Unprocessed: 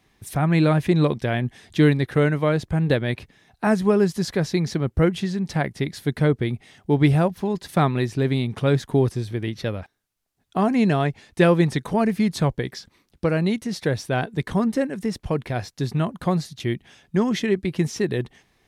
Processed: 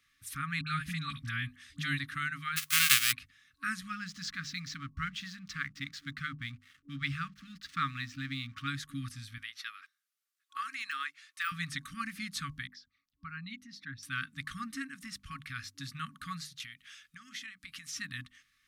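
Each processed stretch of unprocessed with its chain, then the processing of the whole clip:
0:00.61–0:01.99: low-shelf EQ 140 Hz +8 dB + all-pass dispersion highs, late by 60 ms, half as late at 1,100 Hz
0:02.56–0:03.11: spectral envelope flattened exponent 0.1 + dynamic equaliser 2,600 Hz, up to +7 dB, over −37 dBFS, Q 1.3
0:03.88–0:08.68: low-pass filter 7,000 Hz 24 dB per octave + slack as between gear wheels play −45 dBFS
0:09.38–0:11.52: high-pass filter 480 Hz 24 dB per octave + de-essing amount 80%
0:12.67–0:14.03: spectral envelope exaggerated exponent 1.5 + parametric band 8,900 Hz −10.5 dB 0.51 octaves + expander for the loud parts, over −35 dBFS
0:16.62–0:17.93: tilt shelving filter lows −5.5 dB, about 650 Hz + downward compressor 8 to 1, threshold −32 dBFS
whole clip: mains-hum notches 50/100/150/200/250 Hz; brick-wall band-stop 280–1,100 Hz; low shelf with overshoot 300 Hz −10.5 dB, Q 3; level −5.5 dB

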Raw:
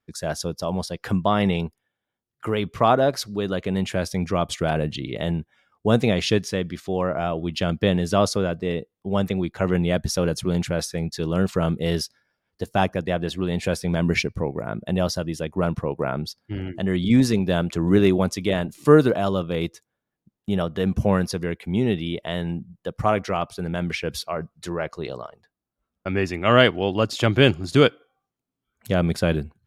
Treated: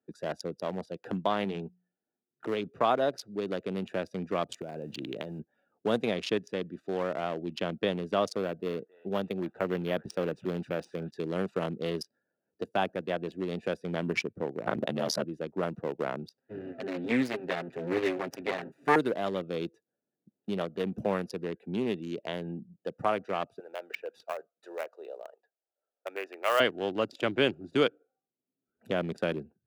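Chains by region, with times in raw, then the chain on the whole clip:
0:01.44–0:02.46: mains-hum notches 60/120/180 Hz + notch comb filter 540 Hz
0:04.54–0:05.39: high-shelf EQ 4,600 Hz +11.5 dB + downward compressor 20 to 1, threshold −24 dBFS + noise that follows the level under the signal 19 dB
0:08.38–0:11.11: echo through a band-pass that steps 267 ms, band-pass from 1,300 Hz, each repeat 1.4 octaves, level −7 dB + linearly interpolated sample-rate reduction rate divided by 3×
0:14.66–0:15.24: comb filter 6.8 ms, depth 69% + ring modulation 38 Hz + envelope flattener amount 100%
0:16.37–0:18.96: lower of the sound and its delayed copy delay 7.5 ms + parametric band 1,900 Hz +11 dB 0.95 octaves
0:23.59–0:26.60: high-pass filter 520 Hz 24 dB per octave + high-shelf EQ 2,700 Hz −3.5 dB + floating-point word with a short mantissa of 2 bits
whole clip: adaptive Wiener filter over 41 samples; high-pass filter 270 Hz 12 dB per octave; multiband upward and downward compressor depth 40%; level −5 dB

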